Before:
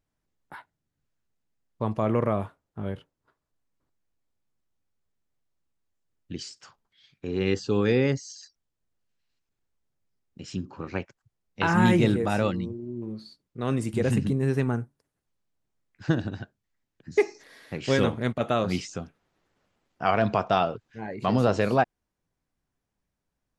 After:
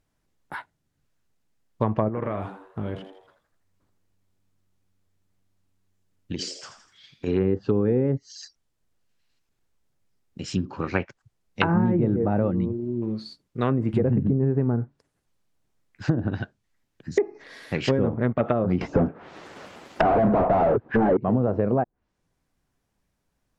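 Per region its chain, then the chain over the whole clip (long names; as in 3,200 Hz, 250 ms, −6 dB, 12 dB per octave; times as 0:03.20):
0:02.08–0:07.27: downward compressor, threshold −31 dBFS + echo with shifted repeats 82 ms, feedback 49%, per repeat +93 Hz, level −10 dB
0:18.81–0:21.17: tilt shelving filter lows +4.5 dB, about 710 Hz + mid-hump overdrive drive 40 dB, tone 6,500 Hz, clips at −8 dBFS + expander for the loud parts, over −26 dBFS
whole clip: treble cut that deepens with the level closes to 610 Hz, closed at −21 dBFS; dynamic equaliser 1,700 Hz, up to +4 dB, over −44 dBFS, Q 1.1; downward compressor 12 to 1, threshold −24 dBFS; level +7 dB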